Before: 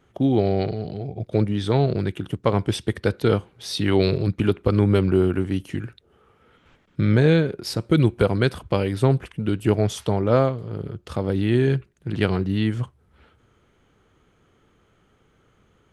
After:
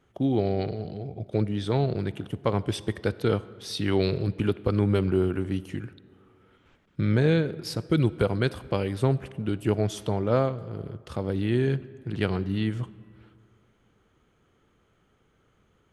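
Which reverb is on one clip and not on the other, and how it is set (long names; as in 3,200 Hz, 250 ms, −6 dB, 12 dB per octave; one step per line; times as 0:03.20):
comb and all-pass reverb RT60 2.3 s, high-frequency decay 0.55×, pre-delay 20 ms, DRR 18.5 dB
level −5 dB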